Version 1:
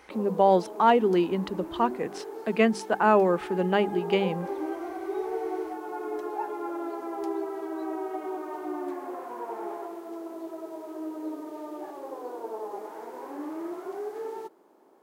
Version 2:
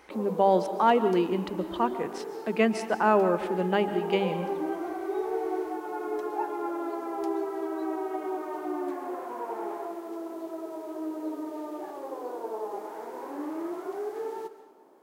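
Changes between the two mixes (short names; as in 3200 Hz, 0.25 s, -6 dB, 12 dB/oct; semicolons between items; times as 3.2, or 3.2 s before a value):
speech -3.0 dB; reverb: on, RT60 0.90 s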